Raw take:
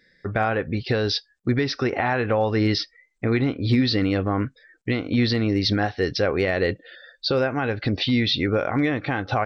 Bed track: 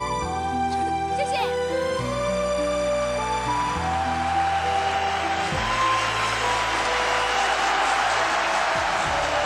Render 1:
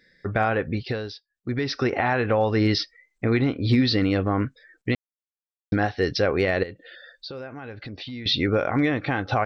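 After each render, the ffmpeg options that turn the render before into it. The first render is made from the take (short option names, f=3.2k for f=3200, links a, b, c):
-filter_complex "[0:a]asettb=1/sr,asplit=3[a][b][c];[a]atrim=end=6.634[d];[b]atrim=start=6.63:end=8.26,asetpts=PTS-STARTPTS,afade=t=in:d=0.004:c=qsin,afade=t=out:st=1.626:d=0.004:c=qsin,acompressor=threshold=-40dB:ratio=2.5:attack=3.2:release=140:knee=1:detection=peak[e];[c]atrim=start=8.256[f];[d][e]acrossfade=d=0.004:c1=hsin:c2=qsin[g];[g][f]acrossfade=d=0.004:c1=qsin:c2=hsin,asplit=5[h][i][j][k][l];[h]atrim=end=1.18,asetpts=PTS-STARTPTS,afade=t=out:st=0.68:d=0.5:silence=0.0841395[m];[i]atrim=start=1.18:end=1.29,asetpts=PTS-STARTPTS,volume=-21.5dB[n];[j]atrim=start=1.29:end=4.95,asetpts=PTS-STARTPTS,afade=t=in:d=0.5:silence=0.0841395,afade=t=out:st=3.656:d=0.004:c=hsin[o];[k]atrim=start=4.95:end=5.72,asetpts=PTS-STARTPTS,volume=0[p];[l]atrim=start=5.72,asetpts=PTS-STARTPTS,afade=t=in:d=0.004:c=hsin[q];[m][n][o][p][q]concat=n=5:v=0:a=1"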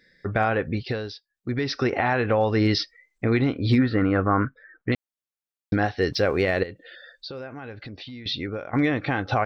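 -filter_complex "[0:a]asettb=1/sr,asplit=3[a][b][c];[a]atrim=end=3.784[d];[b]atrim=start=3.78:end=4.92,asetpts=PTS-STARTPTS,afade=t=in:d=0.004:c=qsin,afade=t=out:st=1.136:d=0.004:c=qsin,lowpass=f=1.4k:t=q:w=3.2[e];[c]atrim=start=4.916[f];[d][e]acrossfade=d=0.004:c1=hsin:c2=qsin[g];[g][f]acrossfade=d=0.004:c1=qsin:c2=hsin,asettb=1/sr,asplit=3[h][i][j];[h]atrim=end=6.124[k];[i]atrim=start=6.12:end=6.6,asetpts=PTS-STARTPTS,afade=t=in:d=0.004:c=qsin,afade=t=out:st=0.476:d=0.004:c=qsin,aeval=exprs='sgn(val(0))*max(abs(val(0))-0.00211,0)':c=same[l];[j]atrim=start=6.596[m];[k][l]acrossfade=d=0.004:c1=hsin:c2=qsin[n];[n][m]acrossfade=d=0.004:c1=qsin:c2=hsin,asplit=2[o][p];[o]atrim=end=8.73,asetpts=PTS-STARTPTS,afade=t=out:st=7.64:d=1.09:silence=0.199526[q];[p]atrim=start=8.73,asetpts=PTS-STARTPTS,afade=t=in:d=0.004:c=hsin:silence=0.199526[r];[q][r]concat=n=2:v=0:a=1"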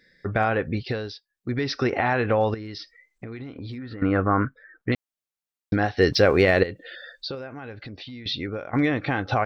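-filter_complex "[0:a]asettb=1/sr,asplit=3[a][b][c];[a]atrim=end=2.544[d];[b]atrim=start=2.54:end=4.02,asetpts=PTS-STARTPTS,afade=t=in:d=0.004:c=qsin,afade=t=out:st=1.476:d=0.004:c=qsin,acompressor=threshold=-32dB:ratio=16:attack=3.2:release=140:knee=1:detection=peak[e];[c]atrim=start=4.016[f];[d][e]acrossfade=d=0.004:c1=hsin:c2=qsin[g];[g][f]acrossfade=d=0.004:c1=qsin:c2=hsin,asplit=3[h][i][j];[h]atrim=end=5.972[k];[i]atrim=start=5.968:end=7.352,asetpts=PTS-STARTPTS,volume=4.5dB[l];[j]atrim=start=7.348[m];[k][l]acrossfade=d=0.004:c1=hsin:c2=hsin[n];[n][m]acrossfade=d=0.004:c1=hsin:c2=hsin"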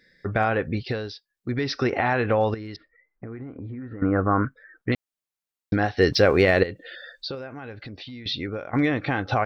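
-filter_complex "[0:a]asettb=1/sr,asplit=3[a][b][c];[a]atrim=end=2.764[d];[b]atrim=start=2.76:end=4.44,asetpts=PTS-STARTPTS,afade=t=in:d=0.004:c=qsin,afade=t=out:st=1.676:d=0.004:c=qsin,lowpass=f=1.7k:w=0.5412,lowpass=f=1.7k:w=1.3066[e];[c]atrim=start=4.436[f];[d][e]acrossfade=d=0.004:c1=hsin:c2=qsin[g];[g][f]acrossfade=d=0.004:c1=qsin:c2=hsin"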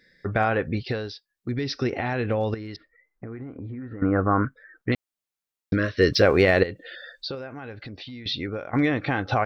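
-filter_complex "[0:a]asettb=1/sr,asplit=3[a][b][c];[a]atrim=end=1.494[d];[b]atrim=start=1.49:end=2.53,asetpts=PTS-STARTPTS,afade=t=in:d=0.004:c=qsin,afade=t=out:st=1.036:d=0.004:c=qsin,equalizer=f=1.1k:t=o:w=2.1:g=-8[e];[c]atrim=start=2.526[f];[d][e]acrossfade=d=0.004:c1=hsin:c2=qsin[g];[g][f]acrossfade=d=0.004:c1=qsin:c2=hsin,asettb=1/sr,asplit=3[h][i][j];[h]atrim=end=5.734[k];[i]atrim=start=5.73:end=6.22,asetpts=PTS-STARTPTS,afade=t=in:d=0.004:c=qsin,afade=t=out:st=0.486:d=0.004:c=qsin,asuperstop=centerf=830:order=20:qfactor=2.3[l];[j]atrim=start=6.216[m];[k][l]acrossfade=d=0.004:c1=hsin:c2=qsin[n];[n][m]acrossfade=d=0.004:c1=qsin:c2=hsin"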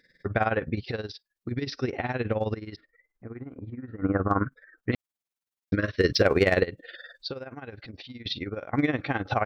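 -af "tremolo=f=19:d=0.78,asoftclip=type=hard:threshold=-10.5dB"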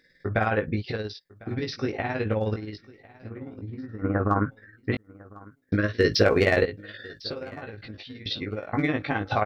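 -filter_complex "[0:a]asplit=2[a][b];[b]adelay=19,volume=-4dB[c];[a][c]amix=inputs=2:normalize=0,aecho=1:1:1051|2102:0.075|0.0262"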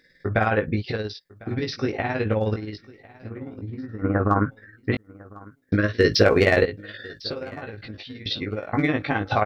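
-af "volume=3dB"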